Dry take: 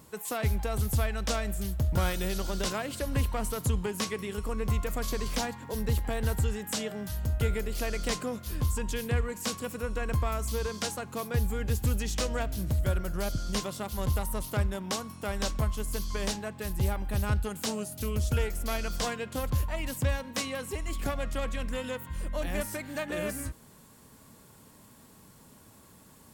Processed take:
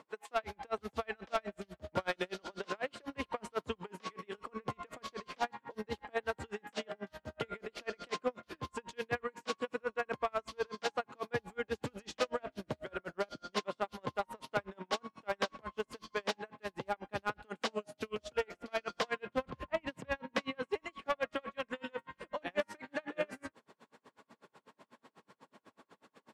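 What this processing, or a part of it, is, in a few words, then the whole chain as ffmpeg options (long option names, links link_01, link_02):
helicopter radio: -filter_complex "[0:a]asettb=1/sr,asplit=3[link_01][link_02][link_03];[link_01]atrim=end=19.274[link_04];[link_02]atrim=start=19.27:end=20.63,asetpts=PTS-STARTPTS,afade=type=in:duration=0.004:curve=qsin,afade=type=out:start_time=1.356:duration=0.004:curve=qsin,bass=frequency=250:gain=10,treble=frequency=4000:gain=-5[link_05];[link_03]atrim=start=20.626[link_06];[link_04][link_05]acrossfade=duration=0.004:curve1=hsin:curve2=qsin[link_07];[link_07][link_06]acrossfade=duration=0.004:curve1=qsin:curve2=hsin,highpass=370,lowpass=2900,aeval=exprs='val(0)*pow(10,-38*(0.5-0.5*cos(2*PI*8.1*n/s))/20)':channel_layout=same,asoftclip=type=hard:threshold=-29.5dB,volume=6dB"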